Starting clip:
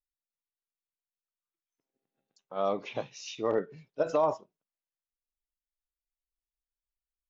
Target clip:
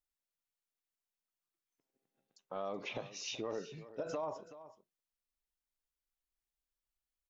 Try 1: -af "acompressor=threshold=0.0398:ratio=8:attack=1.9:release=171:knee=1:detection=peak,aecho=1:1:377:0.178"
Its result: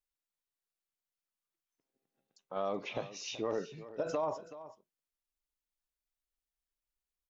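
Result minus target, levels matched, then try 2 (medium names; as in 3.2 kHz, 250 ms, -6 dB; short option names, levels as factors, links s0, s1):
compression: peak gain reduction -5 dB
-af "acompressor=threshold=0.02:ratio=8:attack=1.9:release=171:knee=1:detection=peak,aecho=1:1:377:0.178"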